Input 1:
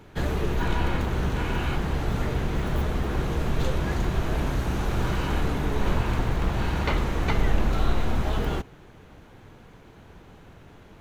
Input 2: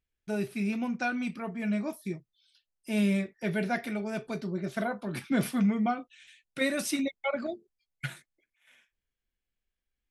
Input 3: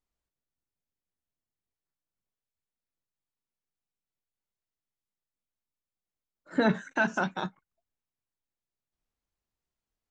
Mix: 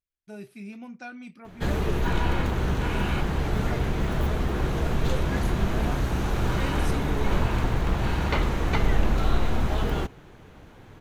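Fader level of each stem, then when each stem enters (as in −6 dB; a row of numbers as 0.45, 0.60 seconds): +0.5 dB, −9.5 dB, muted; 1.45 s, 0.00 s, muted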